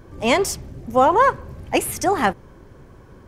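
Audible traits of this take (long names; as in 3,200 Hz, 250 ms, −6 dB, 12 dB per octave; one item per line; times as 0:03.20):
background noise floor −46 dBFS
spectral slope −3.5 dB per octave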